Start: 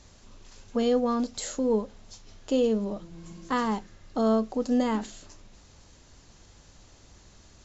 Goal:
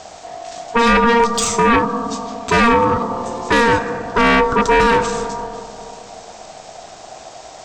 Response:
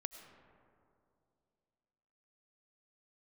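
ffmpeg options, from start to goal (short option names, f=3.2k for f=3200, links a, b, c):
-filter_complex "[0:a]aeval=exprs='val(0)*sin(2*PI*700*n/s)':c=same,asplit=2[a][b];[1:a]atrim=start_sample=2205[c];[b][c]afir=irnorm=-1:irlink=0,volume=6dB[d];[a][d]amix=inputs=2:normalize=0,aeval=exprs='0.501*sin(PI/2*3.16*val(0)/0.501)':c=same,volume=-2dB"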